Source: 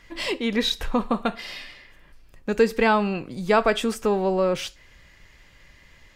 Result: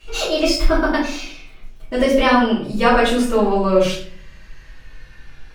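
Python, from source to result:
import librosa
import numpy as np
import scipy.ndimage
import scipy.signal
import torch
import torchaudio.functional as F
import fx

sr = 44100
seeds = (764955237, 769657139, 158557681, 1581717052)

y = fx.speed_glide(x, sr, from_pct=139, to_pct=83)
y = fx.room_shoebox(y, sr, seeds[0], volume_m3=60.0, walls='mixed', distance_m=2.7)
y = y * librosa.db_to_amplitude(-6.0)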